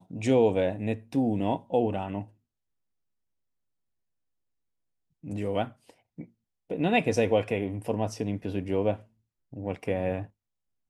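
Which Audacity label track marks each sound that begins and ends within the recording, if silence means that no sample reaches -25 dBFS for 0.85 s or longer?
5.330000	5.630000	sound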